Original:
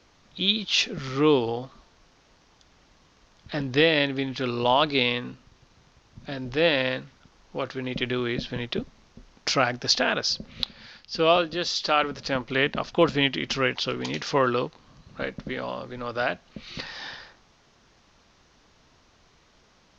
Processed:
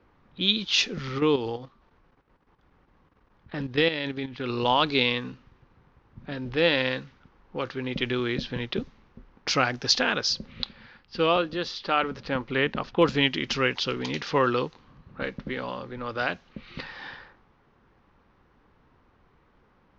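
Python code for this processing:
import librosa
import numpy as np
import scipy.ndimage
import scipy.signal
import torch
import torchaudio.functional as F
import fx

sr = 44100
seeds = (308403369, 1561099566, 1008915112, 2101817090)

y = fx.level_steps(x, sr, step_db=10, at=(1.18, 4.5))
y = fx.lowpass(y, sr, hz=2600.0, slope=6, at=(11.26, 13.02))
y = fx.env_lowpass(y, sr, base_hz=1500.0, full_db=-21.0)
y = fx.peak_eq(y, sr, hz=650.0, db=-8.5, octaves=0.22)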